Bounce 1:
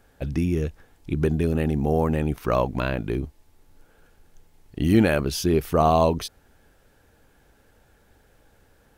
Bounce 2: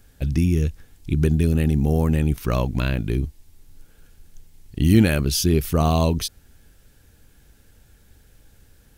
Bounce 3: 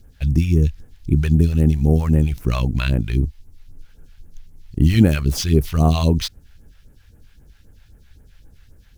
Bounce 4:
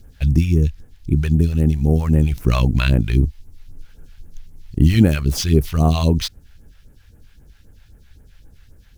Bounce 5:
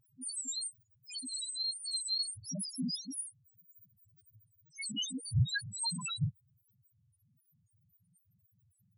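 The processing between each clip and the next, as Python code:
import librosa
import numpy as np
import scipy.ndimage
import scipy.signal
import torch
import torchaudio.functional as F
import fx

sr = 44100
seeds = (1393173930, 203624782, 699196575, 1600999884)

y1 = fx.peak_eq(x, sr, hz=770.0, db=-14.0, octaves=3.0)
y1 = y1 * 10.0 ** (8.5 / 20.0)
y2 = scipy.ndimage.median_filter(y1, 5, mode='constant')
y2 = fx.phaser_stages(y2, sr, stages=2, low_hz=260.0, high_hz=3600.0, hz=3.8, feedback_pct=45)
y2 = y2 * 10.0 ** (3.0 / 20.0)
y3 = fx.rider(y2, sr, range_db=10, speed_s=0.5)
y3 = y3 * 10.0 ** (1.0 / 20.0)
y4 = fx.octave_mirror(y3, sr, pivot_hz=810.0)
y4 = fx.spec_topn(y4, sr, count=1)
y4 = y4 * 10.0 ** (-5.0 / 20.0)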